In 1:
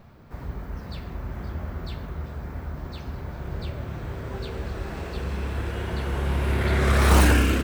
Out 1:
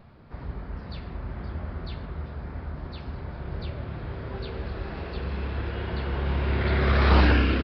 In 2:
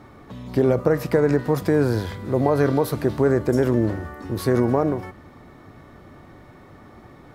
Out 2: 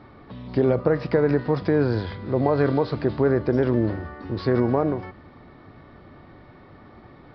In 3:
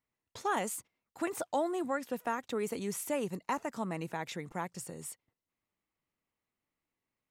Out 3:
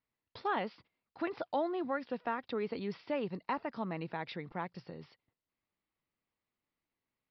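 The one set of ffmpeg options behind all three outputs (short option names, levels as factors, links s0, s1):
-af "aresample=11025,aresample=44100,volume=0.841"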